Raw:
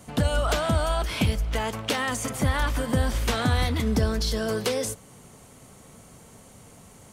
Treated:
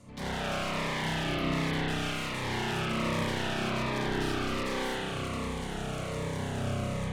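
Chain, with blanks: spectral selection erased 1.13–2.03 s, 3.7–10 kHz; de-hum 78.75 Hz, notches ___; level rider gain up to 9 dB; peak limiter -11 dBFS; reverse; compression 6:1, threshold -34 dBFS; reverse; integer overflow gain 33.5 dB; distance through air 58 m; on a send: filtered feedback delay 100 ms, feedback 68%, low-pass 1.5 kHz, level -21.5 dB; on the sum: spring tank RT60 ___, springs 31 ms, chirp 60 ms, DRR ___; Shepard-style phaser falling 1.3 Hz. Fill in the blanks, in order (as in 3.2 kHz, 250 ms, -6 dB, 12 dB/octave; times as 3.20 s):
5, 3.7 s, -10 dB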